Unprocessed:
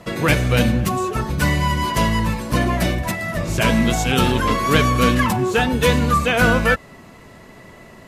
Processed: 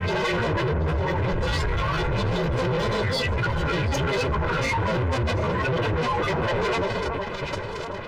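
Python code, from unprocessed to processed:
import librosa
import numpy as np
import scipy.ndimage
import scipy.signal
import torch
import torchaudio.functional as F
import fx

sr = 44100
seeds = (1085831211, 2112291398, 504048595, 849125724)

y = fx.stiff_resonator(x, sr, f0_hz=240.0, decay_s=0.34, stiffness=0.03)
y = fx.fuzz(y, sr, gain_db=55.0, gate_db=-53.0)
y = fx.pitch_keep_formants(y, sr, semitones=-9.5)
y = fx.air_absorb(y, sr, metres=380.0)
y = fx.granulator(y, sr, seeds[0], grain_ms=100.0, per_s=20.0, spray_ms=100.0, spread_st=12)
y = y + 0.66 * np.pad(y, (int(2.0 * sr / 1000.0), 0))[:len(y)]
y = fx.echo_alternate(y, sr, ms=367, hz=1600.0, feedback_pct=58, wet_db=-11)
y = 10.0 ** (-14.5 / 20.0) * np.tanh(y / 10.0 ** (-14.5 / 20.0))
y = fx.env_flatten(y, sr, amount_pct=50)
y = y * 10.0 ** (-5.5 / 20.0)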